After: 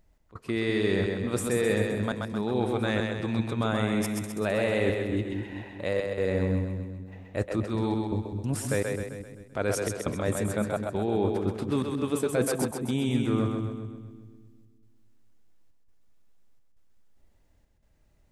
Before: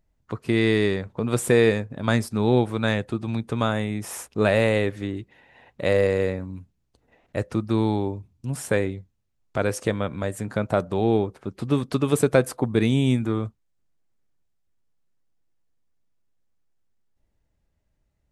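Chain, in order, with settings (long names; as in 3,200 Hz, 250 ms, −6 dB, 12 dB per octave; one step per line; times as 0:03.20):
parametric band 130 Hz −4.5 dB 0.52 octaves
reversed playback
downward compressor 12 to 1, threshold −30 dBFS, peak gain reduction 18.5 dB
reversed playback
gate pattern "x.xxxx.xxxx" 85 BPM −24 dB
echo with a time of its own for lows and highs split 340 Hz, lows 202 ms, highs 130 ms, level −3.5 dB
level +6.5 dB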